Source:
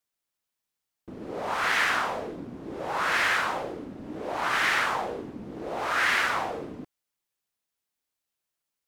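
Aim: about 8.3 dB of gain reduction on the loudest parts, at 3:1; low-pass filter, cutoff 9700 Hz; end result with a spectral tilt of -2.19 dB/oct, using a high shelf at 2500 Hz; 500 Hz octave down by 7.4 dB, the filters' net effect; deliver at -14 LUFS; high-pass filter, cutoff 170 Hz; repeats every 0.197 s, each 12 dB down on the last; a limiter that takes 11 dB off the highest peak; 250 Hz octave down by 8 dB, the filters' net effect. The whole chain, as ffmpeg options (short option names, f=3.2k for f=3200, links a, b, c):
-af "highpass=170,lowpass=9.7k,equalizer=f=250:t=o:g=-6.5,equalizer=f=500:t=o:g=-8.5,highshelf=f=2.5k:g=7.5,acompressor=threshold=-30dB:ratio=3,alimiter=level_in=5.5dB:limit=-24dB:level=0:latency=1,volume=-5.5dB,aecho=1:1:197|394|591:0.251|0.0628|0.0157,volume=24.5dB"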